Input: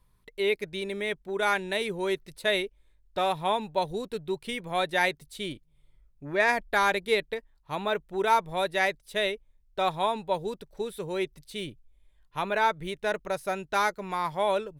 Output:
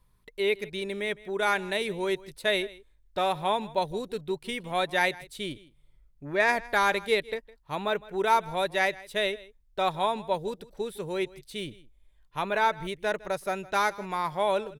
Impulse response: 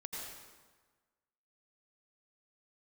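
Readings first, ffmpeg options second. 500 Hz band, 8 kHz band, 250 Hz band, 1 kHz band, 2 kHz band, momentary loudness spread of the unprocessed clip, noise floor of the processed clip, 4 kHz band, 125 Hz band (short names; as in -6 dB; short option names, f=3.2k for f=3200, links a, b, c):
0.0 dB, 0.0 dB, 0.0 dB, 0.0 dB, 0.0 dB, 13 LU, -63 dBFS, 0.0 dB, 0.0 dB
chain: -af "aecho=1:1:159:0.0944"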